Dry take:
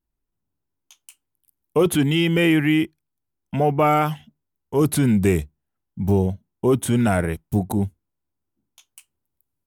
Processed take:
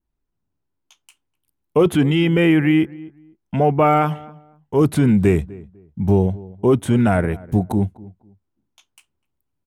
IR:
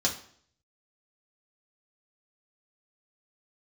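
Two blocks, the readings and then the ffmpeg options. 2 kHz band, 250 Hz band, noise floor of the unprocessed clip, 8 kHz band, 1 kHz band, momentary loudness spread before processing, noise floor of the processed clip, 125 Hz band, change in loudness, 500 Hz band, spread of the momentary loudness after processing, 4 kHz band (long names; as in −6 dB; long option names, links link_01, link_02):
+0.5 dB, +3.0 dB, −79 dBFS, −7.5 dB, +2.5 dB, 9 LU, −76 dBFS, +3.0 dB, +2.5 dB, +3.0 dB, 11 LU, −2.5 dB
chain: -filter_complex "[0:a]aemphasis=mode=reproduction:type=50kf,asplit=2[link_01][link_02];[link_02]adelay=250,lowpass=frequency=1100:poles=1,volume=-20dB,asplit=2[link_03][link_04];[link_04]adelay=250,lowpass=frequency=1100:poles=1,volume=0.25[link_05];[link_03][link_05]amix=inputs=2:normalize=0[link_06];[link_01][link_06]amix=inputs=2:normalize=0,adynamicequalizer=threshold=0.00631:dfrequency=4600:dqfactor=0.87:tfrequency=4600:tqfactor=0.87:attack=5:release=100:ratio=0.375:range=3:mode=cutabove:tftype=bell,volume=3dB"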